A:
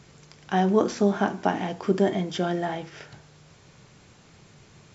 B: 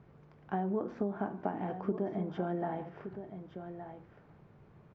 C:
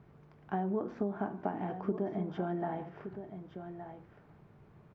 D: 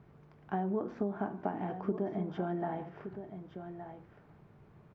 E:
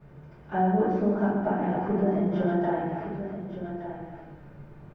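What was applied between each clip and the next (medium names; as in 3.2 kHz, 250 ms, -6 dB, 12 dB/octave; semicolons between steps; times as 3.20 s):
low-pass 1.2 kHz 12 dB/octave; compression 6:1, threshold -24 dBFS, peak gain reduction 9.5 dB; delay 1168 ms -10 dB; trim -5.5 dB
band-stop 520 Hz, Q 14
no audible change
multi-tap echo 130/279 ms -7/-7 dB; reverberation RT60 0.45 s, pre-delay 3 ms, DRR -12.5 dB; trim -5 dB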